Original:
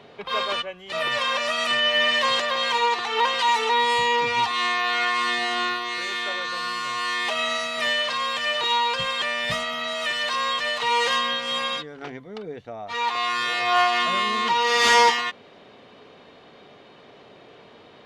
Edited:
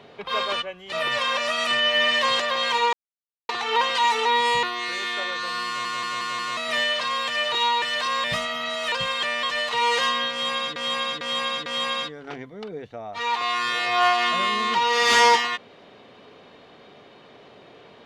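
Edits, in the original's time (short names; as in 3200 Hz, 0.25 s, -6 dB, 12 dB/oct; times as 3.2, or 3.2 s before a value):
2.93 insert silence 0.56 s
4.07–5.72 cut
6.76 stutter in place 0.18 s, 5 plays
8.91–9.42 swap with 10.1–10.52
11.4–11.85 loop, 4 plays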